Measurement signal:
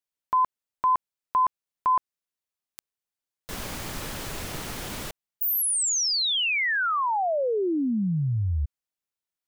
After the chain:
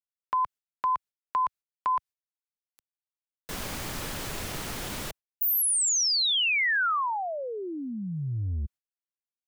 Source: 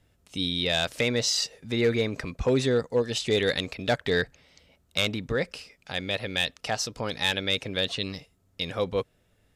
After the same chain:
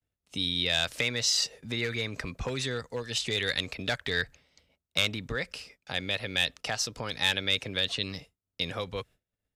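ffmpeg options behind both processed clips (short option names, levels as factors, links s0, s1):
-filter_complex "[0:a]agate=range=0.0224:threshold=0.00251:ratio=3:release=145:detection=peak,acrossover=split=100|1100[s0][s1][s2];[s0]asoftclip=type=tanh:threshold=0.0282[s3];[s1]acompressor=threshold=0.0178:ratio=5:release=254:detection=rms[s4];[s3][s4][s2]amix=inputs=3:normalize=0"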